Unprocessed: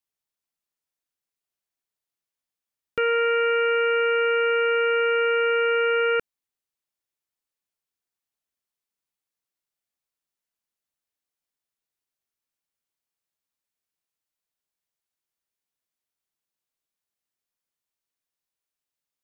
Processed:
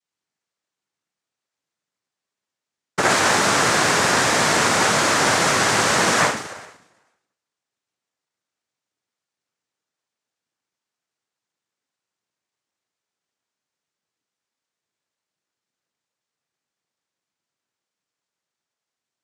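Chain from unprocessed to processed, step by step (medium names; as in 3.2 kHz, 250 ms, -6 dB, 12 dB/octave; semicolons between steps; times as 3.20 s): spring tank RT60 1 s, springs 33/53 ms, chirp 40 ms, DRR -4 dB; noise-vocoded speech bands 3; trim +4 dB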